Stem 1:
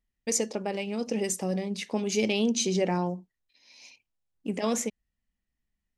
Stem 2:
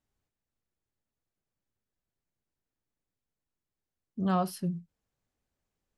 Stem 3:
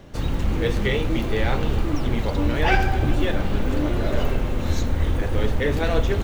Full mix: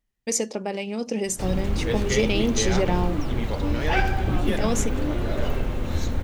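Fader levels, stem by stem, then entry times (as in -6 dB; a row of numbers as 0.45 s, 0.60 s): +2.5 dB, -7.5 dB, -3.0 dB; 0.00 s, 0.00 s, 1.25 s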